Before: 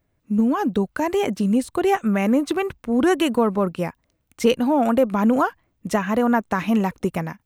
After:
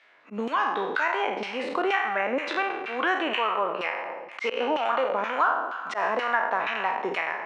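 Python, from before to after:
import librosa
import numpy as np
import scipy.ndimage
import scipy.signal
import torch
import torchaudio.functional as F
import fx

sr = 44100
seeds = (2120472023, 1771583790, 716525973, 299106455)

y = fx.spec_trails(x, sr, decay_s=0.95)
y = fx.tilt_shelf(y, sr, db=-6.5, hz=1200.0)
y = fx.echo_feedback(y, sr, ms=230, feedback_pct=29, wet_db=-18.0)
y = fx.auto_swell(y, sr, attack_ms=131.0)
y = scipy.signal.sosfilt(scipy.signal.butter(2, 5200.0, 'lowpass', fs=sr, output='sos'), y)
y = fx.filter_lfo_bandpass(y, sr, shape='saw_down', hz=2.1, low_hz=410.0, high_hz=2700.0, q=0.75)
y = scipy.signal.sosfilt(scipy.signal.butter(2, 120.0, 'highpass', fs=sr, output='sos'), y)
y = fx.bass_treble(y, sr, bass_db=-15, treble_db=-10)
y = fx.band_squash(y, sr, depth_pct=70)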